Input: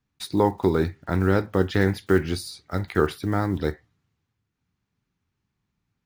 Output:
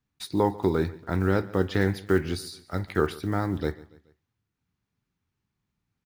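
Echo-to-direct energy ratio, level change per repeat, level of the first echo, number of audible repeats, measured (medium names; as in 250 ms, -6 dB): -19.5 dB, -6.5 dB, -20.5 dB, 3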